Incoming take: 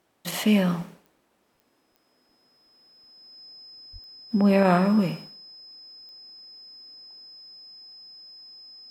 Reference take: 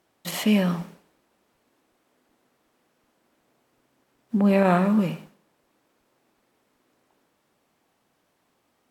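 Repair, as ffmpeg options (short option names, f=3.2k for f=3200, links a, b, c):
-filter_complex "[0:a]adeclick=t=4,bandreject=f=5.1k:w=30,asplit=3[a][b][c];[a]afade=t=out:st=3.92:d=0.02[d];[b]highpass=f=140:w=0.5412,highpass=f=140:w=1.3066,afade=t=in:st=3.92:d=0.02,afade=t=out:st=4.04:d=0.02[e];[c]afade=t=in:st=4.04:d=0.02[f];[d][e][f]amix=inputs=3:normalize=0"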